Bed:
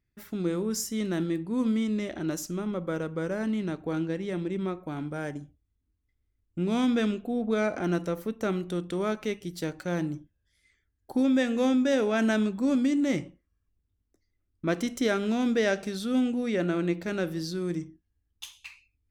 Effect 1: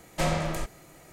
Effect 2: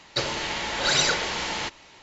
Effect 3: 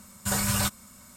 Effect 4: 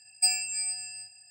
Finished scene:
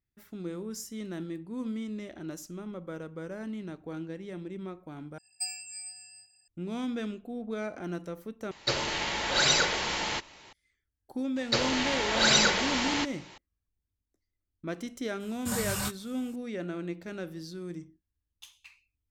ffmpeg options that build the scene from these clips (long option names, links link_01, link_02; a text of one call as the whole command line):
ffmpeg -i bed.wav -i cue0.wav -i cue1.wav -i cue2.wav -i cue3.wav -filter_complex "[2:a]asplit=2[link_01][link_02];[0:a]volume=-8.5dB[link_03];[3:a]flanger=delay=19:depth=5.2:speed=2.4[link_04];[link_03]asplit=3[link_05][link_06][link_07];[link_05]atrim=end=5.184[link_08];[4:a]atrim=end=1.3,asetpts=PTS-STARTPTS,volume=-10.5dB[link_09];[link_06]atrim=start=6.476:end=8.514[link_10];[link_01]atrim=end=2.02,asetpts=PTS-STARTPTS,volume=-2dB[link_11];[link_07]atrim=start=10.526[link_12];[link_02]atrim=end=2.02,asetpts=PTS-STARTPTS,volume=-0.5dB,afade=type=in:duration=0.004:curve=hsin,afade=type=out:start_time=2.016:duration=0.004:curve=hsin,adelay=11360[link_13];[link_04]atrim=end=1.16,asetpts=PTS-STARTPTS,volume=-3.5dB,afade=type=in:duration=0.004:curve=hsin,afade=type=out:start_time=1.156:duration=0.004:curve=hsin,adelay=15200[link_14];[link_08][link_09]acrossfade=duration=0.004:curve1=hsin:curve2=hsin[link_15];[link_15][link_10]acrossfade=duration=0.004:curve1=hsin:curve2=hsin[link_16];[link_16][link_11]acrossfade=duration=0.004:curve1=hsin:curve2=hsin[link_17];[link_17][link_12]acrossfade=duration=0.004:curve1=hsin:curve2=hsin[link_18];[link_18][link_13][link_14]amix=inputs=3:normalize=0" out.wav